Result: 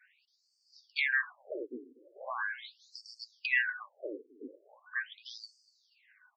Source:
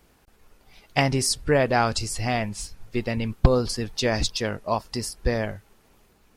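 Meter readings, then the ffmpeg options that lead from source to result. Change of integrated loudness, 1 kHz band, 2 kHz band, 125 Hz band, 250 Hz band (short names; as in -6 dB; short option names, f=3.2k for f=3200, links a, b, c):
-10.0 dB, -18.0 dB, -1.5 dB, under -40 dB, -22.5 dB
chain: -filter_complex "[0:a]afftfilt=real='real(if(lt(b,272),68*(eq(floor(b/68),0)*1+eq(floor(b/68),1)*0+eq(floor(b/68),2)*3+eq(floor(b/68),3)*2)+mod(b,68),b),0)':imag='imag(if(lt(b,272),68*(eq(floor(b/68),0)*1+eq(floor(b/68),1)*0+eq(floor(b/68),2)*3+eq(floor(b/68),3)*2)+mod(b,68),b),0)':win_size=2048:overlap=0.75,adynamicequalizer=threshold=0.00794:dfrequency=6700:dqfactor=1.2:tfrequency=6700:tqfactor=1.2:attack=5:release=100:ratio=0.375:range=2:mode=boostabove:tftype=bell,acrossover=split=510|1900[a][b][c];[c]acrusher=bits=5:mode=log:mix=0:aa=0.000001[d];[a][b][d]amix=inputs=3:normalize=0,aeval=exprs='1.26*(cos(1*acos(clip(val(0)/1.26,-1,1)))-cos(1*PI/2))+0.0355*(cos(2*acos(clip(val(0)/1.26,-1,1)))-cos(2*PI/2))+0.0178*(cos(5*acos(clip(val(0)/1.26,-1,1)))-cos(5*PI/2))+0.0158*(cos(8*acos(clip(val(0)/1.26,-1,1)))-cos(8*PI/2))':c=same,highpass=f=230:w=0.5412,highpass=f=230:w=1.3066,equalizer=f=250:t=q:w=4:g=4,equalizer=f=590:t=q:w=4:g=9,equalizer=f=1.1k:t=q:w=4:g=9,equalizer=f=2.7k:t=q:w=4:g=5,equalizer=f=4.7k:t=q:w=4:g=9,equalizer=f=7.2k:t=q:w=4:g=-4,lowpass=f=8.6k:w=0.5412,lowpass=f=8.6k:w=1.3066,asplit=2[e][f];[f]adelay=241,lowpass=f=4.6k:p=1,volume=-19.5dB,asplit=2[g][h];[h]adelay=241,lowpass=f=4.6k:p=1,volume=0.41,asplit=2[i][j];[j]adelay=241,lowpass=f=4.6k:p=1,volume=0.41[k];[g][i][k]amix=inputs=3:normalize=0[l];[e][l]amix=inputs=2:normalize=0,afftfilt=real='re*between(b*sr/1024,330*pow(6300/330,0.5+0.5*sin(2*PI*0.4*pts/sr))/1.41,330*pow(6300/330,0.5+0.5*sin(2*PI*0.4*pts/sr))*1.41)':imag='im*between(b*sr/1024,330*pow(6300/330,0.5+0.5*sin(2*PI*0.4*pts/sr))/1.41,330*pow(6300/330,0.5+0.5*sin(2*PI*0.4*pts/sr))*1.41)':win_size=1024:overlap=0.75,volume=-7.5dB"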